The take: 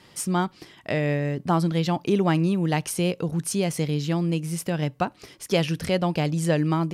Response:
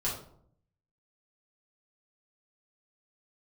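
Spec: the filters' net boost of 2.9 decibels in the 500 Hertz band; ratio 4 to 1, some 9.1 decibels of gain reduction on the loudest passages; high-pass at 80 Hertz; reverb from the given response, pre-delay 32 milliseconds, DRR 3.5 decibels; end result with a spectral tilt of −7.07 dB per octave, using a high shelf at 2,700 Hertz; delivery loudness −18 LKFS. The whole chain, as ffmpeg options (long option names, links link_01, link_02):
-filter_complex "[0:a]highpass=80,equalizer=frequency=500:width_type=o:gain=4,highshelf=frequency=2700:gain=-6.5,acompressor=threshold=-26dB:ratio=4,asplit=2[link_01][link_02];[1:a]atrim=start_sample=2205,adelay=32[link_03];[link_02][link_03]afir=irnorm=-1:irlink=0,volume=-9.5dB[link_04];[link_01][link_04]amix=inputs=2:normalize=0,volume=10dB"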